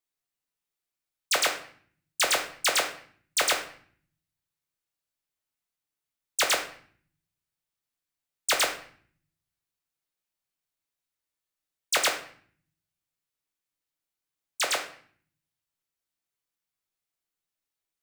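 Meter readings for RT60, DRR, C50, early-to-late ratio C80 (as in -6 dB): 0.50 s, 1.5 dB, 8.5 dB, 12.5 dB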